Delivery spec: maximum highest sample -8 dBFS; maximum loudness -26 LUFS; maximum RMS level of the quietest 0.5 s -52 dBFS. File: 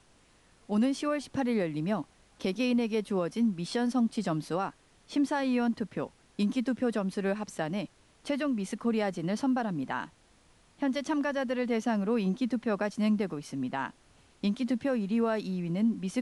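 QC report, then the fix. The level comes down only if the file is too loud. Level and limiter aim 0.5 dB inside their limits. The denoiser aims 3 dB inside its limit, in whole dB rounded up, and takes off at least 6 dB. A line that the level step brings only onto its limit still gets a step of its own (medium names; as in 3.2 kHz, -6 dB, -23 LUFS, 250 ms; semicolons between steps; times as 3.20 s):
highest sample -19.5 dBFS: pass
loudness -31.0 LUFS: pass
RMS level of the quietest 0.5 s -62 dBFS: pass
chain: none needed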